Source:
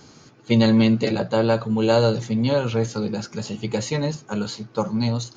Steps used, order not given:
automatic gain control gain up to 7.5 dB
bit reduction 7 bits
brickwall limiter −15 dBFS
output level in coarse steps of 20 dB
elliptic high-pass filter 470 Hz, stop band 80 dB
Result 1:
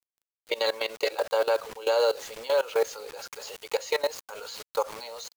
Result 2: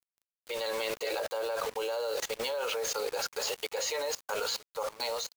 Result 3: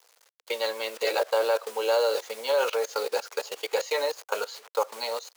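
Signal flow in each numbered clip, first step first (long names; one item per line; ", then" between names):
elliptic high-pass filter, then bit reduction, then automatic gain control, then output level in coarse steps, then brickwall limiter
brickwall limiter, then elliptic high-pass filter, then bit reduction, then output level in coarse steps, then automatic gain control
brickwall limiter, then bit reduction, then automatic gain control, then output level in coarse steps, then elliptic high-pass filter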